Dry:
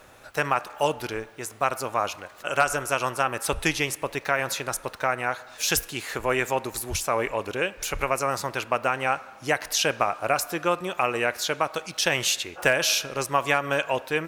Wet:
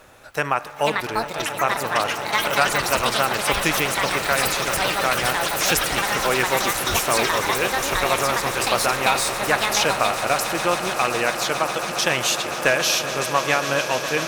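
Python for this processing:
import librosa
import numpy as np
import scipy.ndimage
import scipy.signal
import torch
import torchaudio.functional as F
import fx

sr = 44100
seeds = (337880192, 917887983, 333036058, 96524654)

y = fx.echo_pitch(x, sr, ms=615, semitones=7, count=3, db_per_echo=-3.0)
y = fx.echo_swell(y, sr, ms=138, loudest=8, wet_db=-15.5)
y = F.gain(torch.from_numpy(y), 2.0).numpy()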